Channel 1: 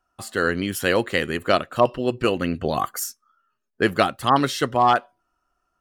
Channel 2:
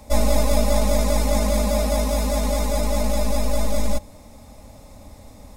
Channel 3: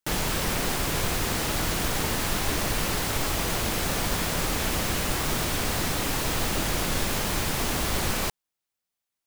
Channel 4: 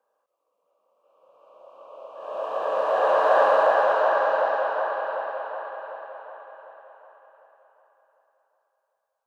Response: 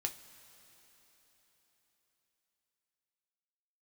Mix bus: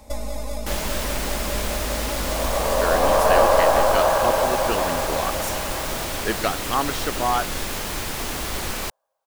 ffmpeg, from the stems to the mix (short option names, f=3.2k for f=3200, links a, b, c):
-filter_complex "[0:a]adelay=2450,volume=-5dB[a];[1:a]acompressor=threshold=-23dB:ratio=6,volume=-1dB[b];[2:a]adelay=600,volume=-0.5dB[c];[3:a]lowpass=1.4k,volume=2.5dB[d];[a][b][c][d]amix=inputs=4:normalize=0,equalizer=f=140:w=1:g=-5.5"